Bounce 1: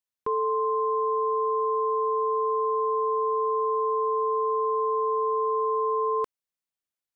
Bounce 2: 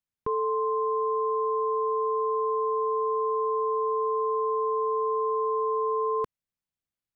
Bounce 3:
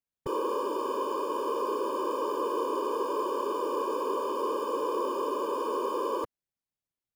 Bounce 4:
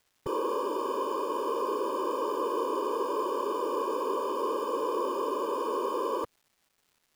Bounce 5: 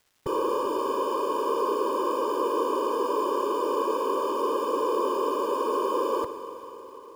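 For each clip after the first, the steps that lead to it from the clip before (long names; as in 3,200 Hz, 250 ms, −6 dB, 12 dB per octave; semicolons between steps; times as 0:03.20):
bass and treble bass +12 dB, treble −4 dB; level −2 dB
in parallel at −11 dB: decimation without filtering 22×; on the sum: random phases in short frames; level −5 dB
surface crackle 590 per second −57 dBFS
convolution reverb RT60 4.4 s, pre-delay 43 ms, DRR 9 dB; level +3.5 dB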